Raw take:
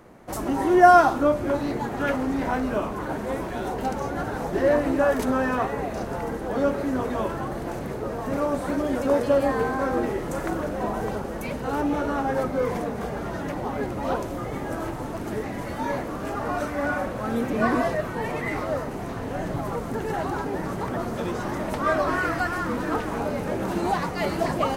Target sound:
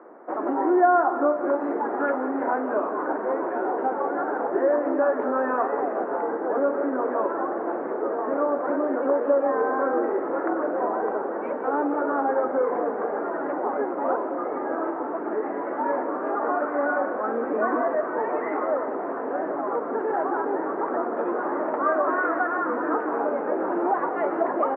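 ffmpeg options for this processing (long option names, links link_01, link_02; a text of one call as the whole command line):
ffmpeg -i in.wav -filter_complex "[0:a]acompressor=threshold=-25dB:ratio=2.5,asuperpass=centerf=680:order=8:qfactor=0.53,asplit=2[link_01][link_02];[link_02]aecho=0:1:181|362|543|724|905:0.224|0.119|0.0629|0.0333|0.0177[link_03];[link_01][link_03]amix=inputs=2:normalize=0,volume=5dB" out.wav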